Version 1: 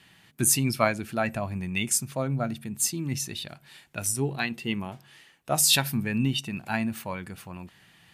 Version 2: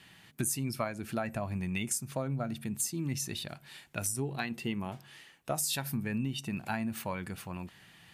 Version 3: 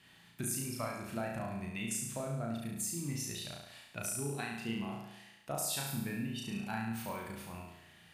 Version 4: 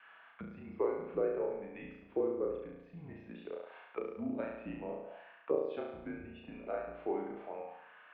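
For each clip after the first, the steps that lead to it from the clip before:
dynamic bell 3.1 kHz, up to -5 dB, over -40 dBFS, Q 1; compression 6:1, threshold -30 dBFS, peak gain reduction 12.5 dB
flutter echo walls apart 6 m, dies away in 0.89 s; trim -7 dB
auto-wah 540–1500 Hz, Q 2.6, down, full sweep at -39 dBFS; mistuned SSB -170 Hz 380–3300 Hz; trim +11.5 dB

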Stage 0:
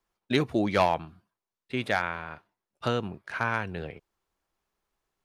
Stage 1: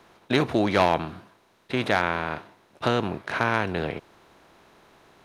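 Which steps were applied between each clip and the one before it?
spectral levelling over time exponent 0.6; trim +1 dB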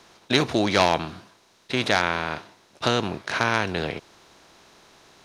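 peaking EQ 5.7 kHz +11.5 dB 1.6 oct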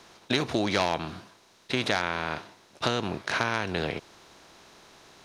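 compression 2.5:1, threshold -24 dBFS, peak gain reduction 7.5 dB

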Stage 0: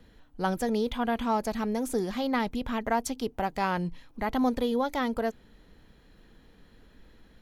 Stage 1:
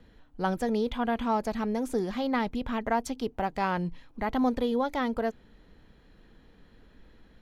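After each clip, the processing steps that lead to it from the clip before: treble shelf 6.2 kHz -9.5 dB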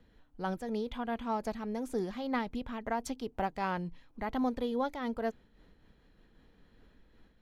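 random flutter of the level, depth 65%; trim -2.5 dB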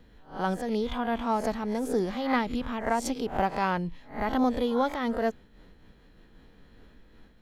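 reverse spectral sustain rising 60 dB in 0.35 s; trim +6 dB

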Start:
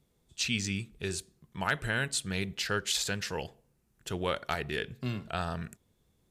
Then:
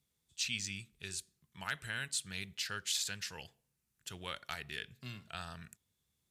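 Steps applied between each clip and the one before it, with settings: high-pass 63 Hz; de-esser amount 50%; amplifier tone stack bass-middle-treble 5-5-5; trim +3 dB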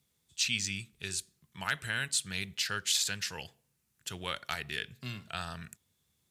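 high-pass 60 Hz; trim +6 dB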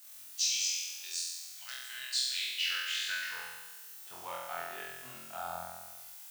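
band-pass sweep 5.6 kHz -> 800 Hz, 1.93–3.80 s; added noise blue -56 dBFS; flutter echo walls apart 4 m, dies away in 1.2 s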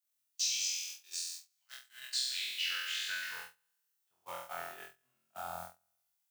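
gate -41 dBFS, range -29 dB; bass shelf 150 Hz +3.5 dB; trim -2.5 dB

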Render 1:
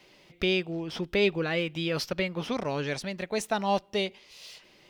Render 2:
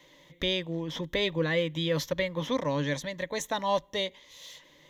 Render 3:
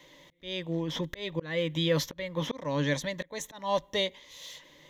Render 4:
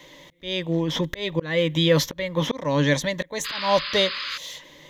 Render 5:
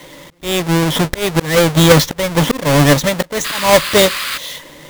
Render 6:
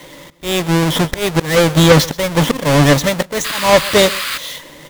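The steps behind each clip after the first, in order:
rippled EQ curve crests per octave 1.1, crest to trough 12 dB; trim -1.5 dB
slow attack 313 ms; trim +2 dB
painted sound noise, 3.44–4.38 s, 1–5.1 kHz -39 dBFS; trim +8 dB
square wave that keeps the level; trim +6 dB
delay 128 ms -20.5 dB; slew-rate limiter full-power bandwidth 2.2 kHz

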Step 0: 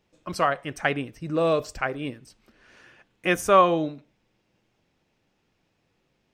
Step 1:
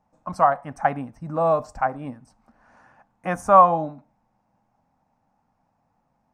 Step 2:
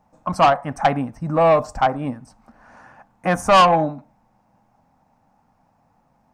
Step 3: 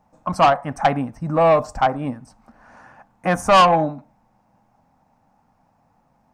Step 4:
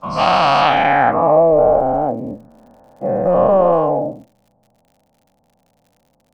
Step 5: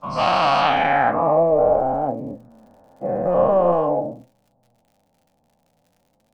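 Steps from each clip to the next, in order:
FFT filter 140 Hz 0 dB, 250 Hz +4 dB, 370 Hz -13 dB, 810 Hz +12 dB, 3.2 kHz -19 dB, 5.7 kHz -9 dB, 9.7 kHz -7 dB, 14 kHz -17 dB
saturation -16.5 dBFS, distortion -7 dB; trim +8 dB
no audible change
every event in the spectrogram widened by 480 ms; low-pass sweep 4.5 kHz -> 540 Hz, 0.58–1.50 s; crackle 84 per s -37 dBFS; trim -6 dB
flange 0.45 Hz, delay 6.7 ms, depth 7 ms, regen +65%

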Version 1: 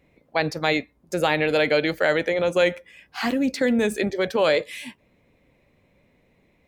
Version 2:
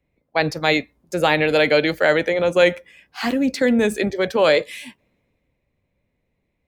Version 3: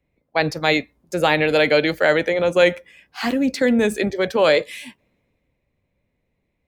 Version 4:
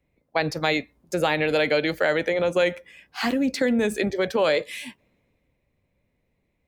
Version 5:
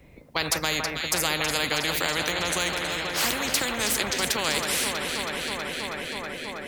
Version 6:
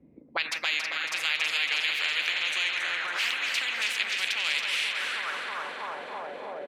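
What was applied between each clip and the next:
three bands expanded up and down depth 40%; trim +3.5 dB
no audible change
compression 2:1, threshold -22 dBFS, peak gain reduction 7.5 dB
echo whose repeats swap between lows and highs 161 ms, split 1.9 kHz, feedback 84%, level -12 dB; spectrum-flattening compressor 4:1
auto-wah 230–2600 Hz, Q 2.6, up, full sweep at -23.5 dBFS; feedback delay 277 ms, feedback 50%, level -6 dB; trim +3.5 dB

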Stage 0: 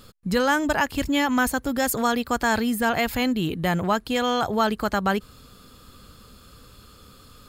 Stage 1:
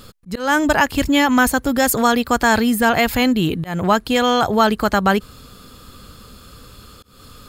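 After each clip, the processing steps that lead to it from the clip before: slow attack 218 ms; trim +7 dB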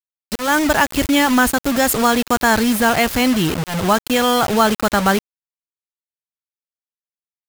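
bit crusher 4-bit

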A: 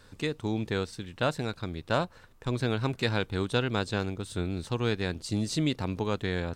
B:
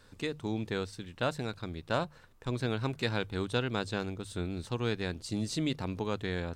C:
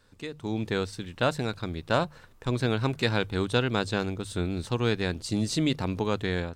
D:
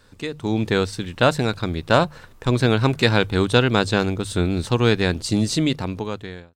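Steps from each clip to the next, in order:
hum notches 50/100/150 Hz; trim -3.5 dB
level rider gain up to 10 dB; trim -4 dB
fade out at the end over 1.32 s; trim +8.5 dB

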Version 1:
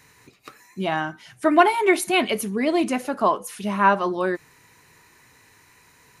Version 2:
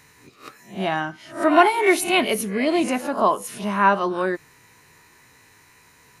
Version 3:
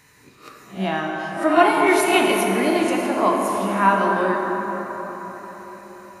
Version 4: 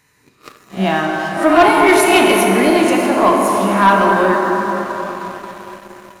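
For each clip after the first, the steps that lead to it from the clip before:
reverse spectral sustain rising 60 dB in 0.33 s
plate-style reverb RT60 4.9 s, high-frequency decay 0.45×, DRR -1 dB; trim -2 dB
waveshaping leveller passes 2

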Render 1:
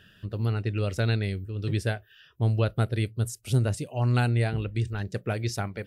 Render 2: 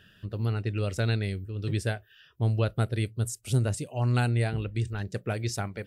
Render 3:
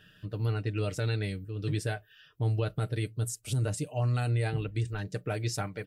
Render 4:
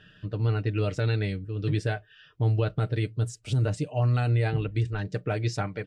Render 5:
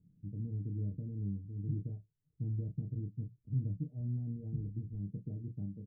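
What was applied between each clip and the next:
dynamic bell 7.9 kHz, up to +5 dB, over -58 dBFS, Q 1.9; trim -1.5 dB
comb 6.6 ms, depth 58%; peak limiter -19 dBFS, peak gain reduction 7.5 dB; trim -2 dB
distance through air 110 m; trim +4.5 dB
four-pole ladder low-pass 260 Hz, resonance 45%; on a send: early reflections 13 ms -10.5 dB, 30 ms -6.5 dB; on the sum: trim -3 dB

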